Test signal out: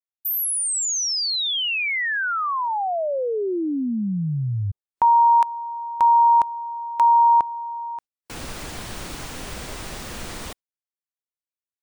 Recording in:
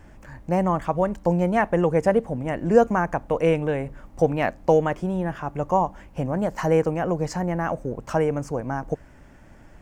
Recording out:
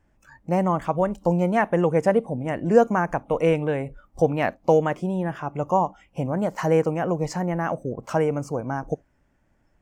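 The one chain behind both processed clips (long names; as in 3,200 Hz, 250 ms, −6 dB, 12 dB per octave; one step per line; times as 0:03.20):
noise reduction from a noise print of the clip's start 17 dB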